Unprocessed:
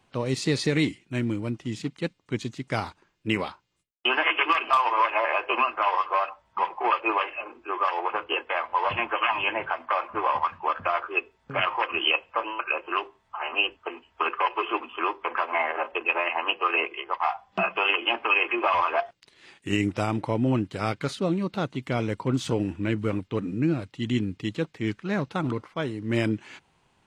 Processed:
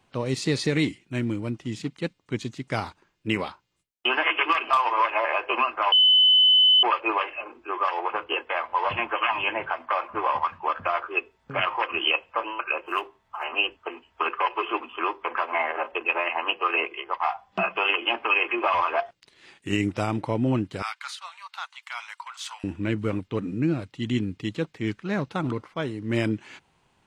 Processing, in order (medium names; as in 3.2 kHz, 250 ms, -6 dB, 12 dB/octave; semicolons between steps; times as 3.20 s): 5.92–6.83 s: bleep 3.02 kHz -13.5 dBFS; 12.86–13.44 s: median filter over 5 samples; 20.82–22.64 s: steep high-pass 880 Hz 48 dB/octave